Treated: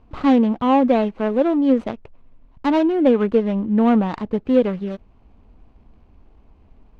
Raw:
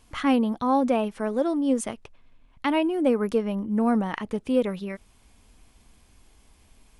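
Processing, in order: median filter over 25 samples; LPF 3600 Hz 12 dB/oct; gain +7 dB

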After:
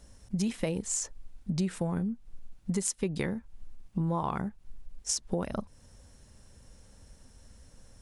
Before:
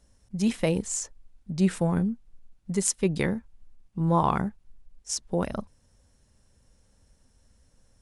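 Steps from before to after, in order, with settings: compressor 6:1, threshold -36 dBFS, peak gain reduction 17.5 dB; gain +7.5 dB

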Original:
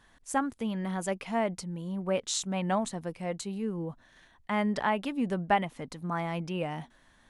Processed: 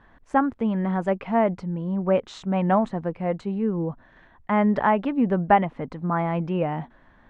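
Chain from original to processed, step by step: LPF 1600 Hz 12 dB/oct; gain +8.5 dB

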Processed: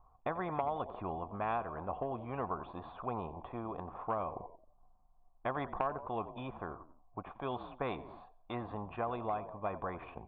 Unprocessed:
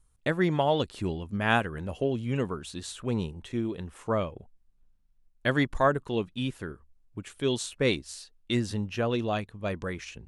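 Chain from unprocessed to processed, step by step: vocal tract filter a; bell 2400 Hz -8 dB 0.49 oct; compressor 2.5:1, threshold -43 dBFS, peak gain reduction 11 dB; frequency-shifting echo 89 ms, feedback 43%, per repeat -45 Hz, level -21 dB; spectral compressor 2:1; gain +10.5 dB

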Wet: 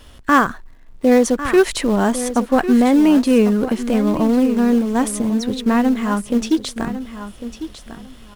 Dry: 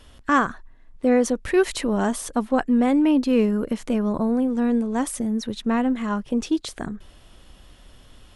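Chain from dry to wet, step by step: in parallel at -10 dB: companded quantiser 4-bit; on the sum: feedback echo 1.1 s, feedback 18%, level -12 dB; gain +3 dB

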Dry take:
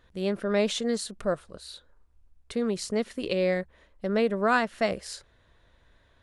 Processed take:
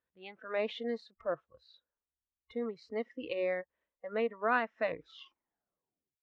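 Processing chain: tape stop at the end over 1.46 s; HPF 260 Hz 6 dB/oct; spectral noise reduction 19 dB; LPF 3000 Hz 24 dB/oct; gain -5.5 dB

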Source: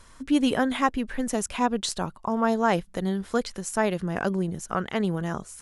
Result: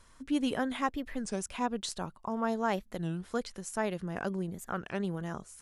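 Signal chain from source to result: record warp 33 1/3 rpm, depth 250 cents; gain -8 dB

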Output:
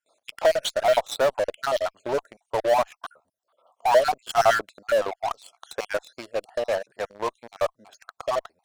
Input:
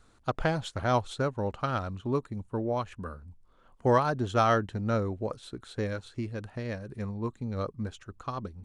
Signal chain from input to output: random spectral dropouts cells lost 51%; gate with hold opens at -56 dBFS; resonant high-pass 640 Hz, resonance Q 4.6; high shelf 3700 Hz +7.5 dB; in parallel at -7 dB: fuzz box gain 34 dB, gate -41 dBFS; on the sum: gain -2.5 dB

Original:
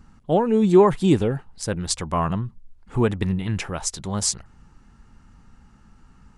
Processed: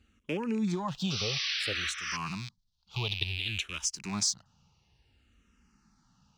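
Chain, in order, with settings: rattling part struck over -34 dBFS, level -26 dBFS; HPF 49 Hz; band shelf 3900 Hz +11 dB; sample leveller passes 1; 1.84–3.95 graphic EQ 125/250/500/2000/4000 Hz -3/-6/-11/-6/+9 dB; 1.1–2.17 painted sound noise 1100–6100 Hz -17 dBFS; compressor 6:1, threshold -17 dBFS, peak gain reduction 14 dB; endless phaser -0.57 Hz; gain -8.5 dB

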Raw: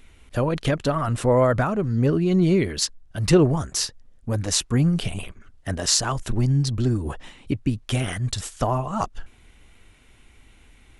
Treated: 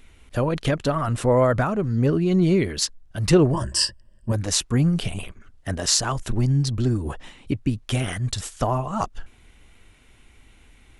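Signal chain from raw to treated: 3.53–4.32 ripple EQ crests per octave 1.3, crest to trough 16 dB

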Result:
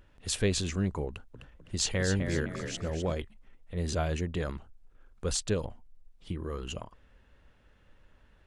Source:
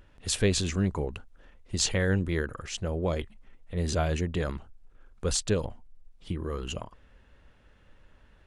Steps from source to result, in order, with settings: 1.08–3.13 frequency-shifting echo 0.255 s, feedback 41%, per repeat +45 Hz, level -7.5 dB; gain -3 dB

